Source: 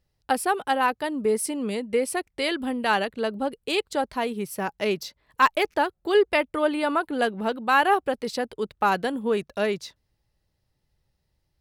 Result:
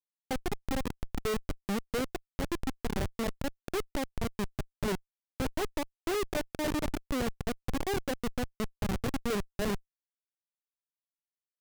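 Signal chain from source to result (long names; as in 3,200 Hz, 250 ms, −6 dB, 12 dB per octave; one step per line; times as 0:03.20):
running median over 41 samples
comparator with hysteresis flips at −26 dBFS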